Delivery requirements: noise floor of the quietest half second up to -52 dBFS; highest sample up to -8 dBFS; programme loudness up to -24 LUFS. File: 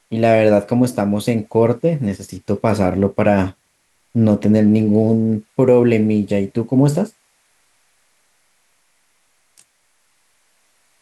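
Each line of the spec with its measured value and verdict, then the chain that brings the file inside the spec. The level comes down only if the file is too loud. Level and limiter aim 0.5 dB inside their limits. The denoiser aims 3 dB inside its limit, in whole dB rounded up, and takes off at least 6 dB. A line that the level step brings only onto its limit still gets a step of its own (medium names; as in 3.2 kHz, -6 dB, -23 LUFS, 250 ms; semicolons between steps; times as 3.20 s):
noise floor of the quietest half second -63 dBFS: pass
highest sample -2.5 dBFS: fail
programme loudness -16.5 LUFS: fail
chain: trim -8 dB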